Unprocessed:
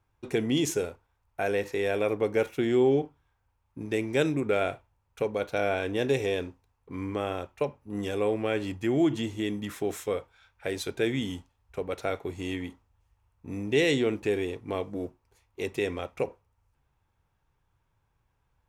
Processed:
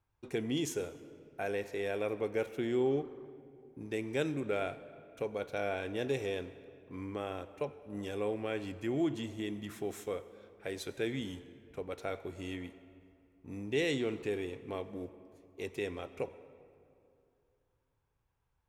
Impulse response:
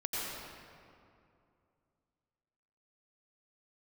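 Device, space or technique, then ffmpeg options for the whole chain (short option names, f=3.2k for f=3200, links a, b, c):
saturated reverb return: -filter_complex "[0:a]asplit=2[a][b];[1:a]atrim=start_sample=2205[c];[b][c]afir=irnorm=-1:irlink=0,asoftclip=type=tanh:threshold=-16dB,volume=-17.5dB[d];[a][d]amix=inputs=2:normalize=0,volume=-8.5dB"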